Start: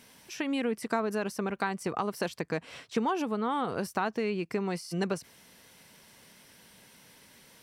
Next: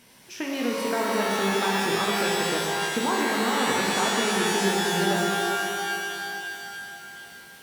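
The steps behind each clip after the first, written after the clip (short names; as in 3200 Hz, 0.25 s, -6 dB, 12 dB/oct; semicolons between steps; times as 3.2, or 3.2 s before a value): shimmer reverb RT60 2.8 s, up +12 st, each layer -2 dB, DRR -2.5 dB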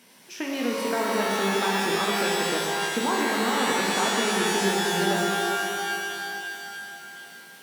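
HPF 160 Hz 24 dB/oct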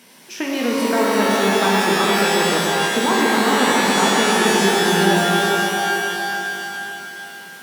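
repeats that get brighter 0.14 s, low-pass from 400 Hz, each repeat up 1 oct, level -3 dB; gain +6.5 dB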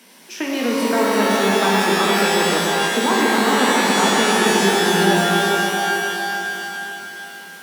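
steep high-pass 160 Hz 96 dB/oct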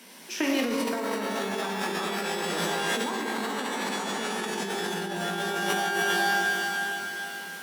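negative-ratio compressor -23 dBFS, ratio -1; gain -6 dB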